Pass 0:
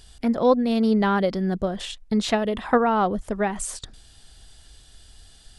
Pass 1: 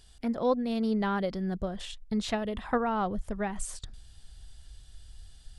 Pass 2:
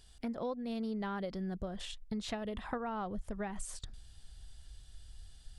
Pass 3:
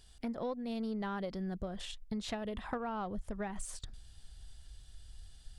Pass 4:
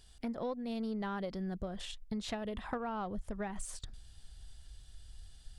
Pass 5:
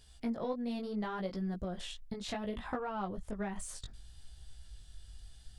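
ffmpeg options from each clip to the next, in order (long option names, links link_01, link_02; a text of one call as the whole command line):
ffmpeg -i in.wav -af "asubboost=boost=3:cutoff=170,volume=-8dB" out.wav
ffmpeg -i in.wav -af "acompressor=threshold=-32dB:ratio=5,volume=-3dB" out.wav
ffmpeg -i in.wav -af "aeval=exprs='0.0631*(cos(1*acos(clip(val(0)/0.0631,-1,1)))-cos(1*PI/2))+0.000891*(cos(8*acos(clip(val(0)/0.0631,-1,1)))-cos(8*PI/2))':channel_layout=same" out.wav
ffmpeg -i in.wav -af anull out.wav
ffmpeg -i in.wav -af "flanger=delay=15:depth=6:speed=0.69,volume=3.5dB" out.wav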